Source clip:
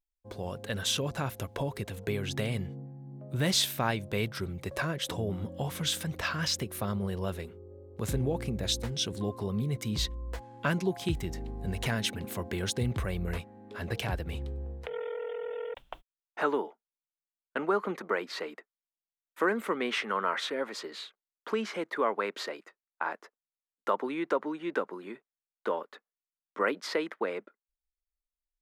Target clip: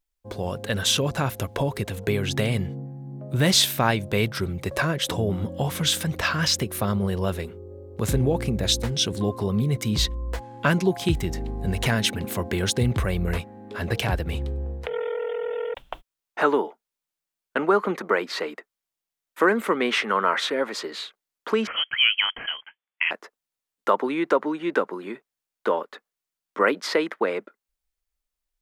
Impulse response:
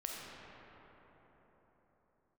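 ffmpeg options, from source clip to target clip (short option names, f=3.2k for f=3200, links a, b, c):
-filter_complex "[0:a]asettb=1/sr,asplit=3[a][b][c];[a]atrim=end=21.674[d];[b]atrim=start=21.67:end=23.11,asetpts=PTS-STARTPTS,afade=t=in:d=0.004:c=qsin,afade=t=out:st=1.436:d=0.004:c=qsin,lowpass=f=3k:t=q:w=0.5098,lowpass=f=3k:t=q:w=0.6013,lowpass=f=3k:t=q:w=0.9,lowpass=f=3k:t=q:w=2.563,afreqshift=-3500[e];[c]atrim=start=23.106[f];[d][e]acrossfade=d=0.004:c1=hsin:c2=qsin[g];[g][f]acrossfade=d=0.004:c1=qsin:c2=hsin,volume=8dB"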